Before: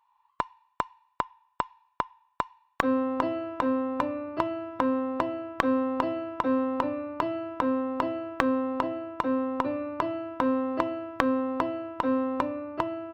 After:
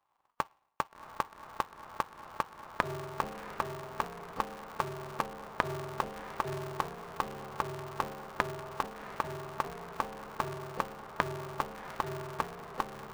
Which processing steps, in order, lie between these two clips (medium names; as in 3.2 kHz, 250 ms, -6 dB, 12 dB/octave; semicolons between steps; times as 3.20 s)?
harmonic-percussive split harmonic -11 dB; on a send: echo that smears into a reverb 714 ms, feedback 54%, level -11 dB; on the sum: polarity switched at an audio rate 120 Hz; trim -3.5 dB